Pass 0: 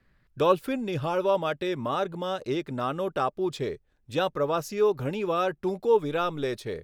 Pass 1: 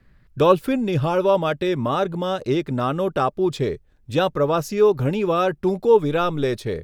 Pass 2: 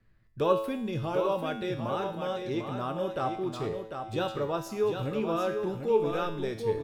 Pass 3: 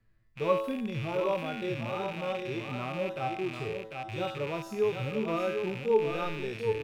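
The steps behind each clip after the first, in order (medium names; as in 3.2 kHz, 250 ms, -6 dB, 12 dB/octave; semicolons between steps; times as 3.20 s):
bass shelf 260 Hz +7 dB; trim +5 dB
feedback comb 110 Hz, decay 0.72 s, harmonics all, mix 80%; on a send: feedback delay 747 ms, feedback 23%, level -6.5 dB
rattle on loud lows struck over -45 dBFS, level -26 dBFS; harmonic-percussive split percussive -16 dB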